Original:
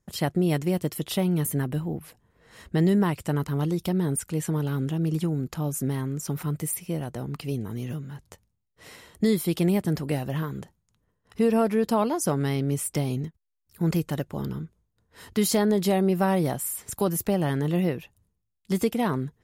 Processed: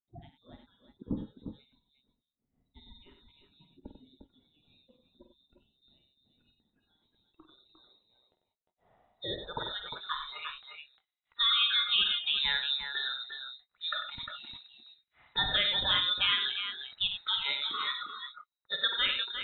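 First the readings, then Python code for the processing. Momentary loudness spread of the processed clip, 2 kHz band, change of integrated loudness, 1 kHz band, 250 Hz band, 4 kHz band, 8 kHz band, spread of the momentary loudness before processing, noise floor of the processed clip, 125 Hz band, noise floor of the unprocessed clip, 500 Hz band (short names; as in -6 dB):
19 LU, +3.0 dB, -3.5 dB, -8.0 dB, -24.5 dB, +12.0 dB, under -40 dB, 11 LU, under -85 dBFS, -26.5 dB, -76 dBFS, -22.5 dB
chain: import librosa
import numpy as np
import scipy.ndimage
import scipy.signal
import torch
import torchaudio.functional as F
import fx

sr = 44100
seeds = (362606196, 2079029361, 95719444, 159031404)

p1 = fx.noise_reduce_blind(x, sr, reduce_db=17)
p2 = fx.high_shelf(p1, sr, hz=2400.0, db=-6.0)
p3 = fx.freq_invert(p2, sr, carrier_hz=3900)
p4 = p3 + fx.echo_multitap(p3, sr, ms=(50, 95, 353, 375), db=(-9.0, -8.5, -8.0, -18.5), dry=0)
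p5 = fx.filter_sweep_lowpass(p4, sr, from_hz=260.0, to_hz=1500.0, start_s=6.75, end_s=10.74, q=2.2)
y = p5 * librosa.db_to_amplitude(7.0)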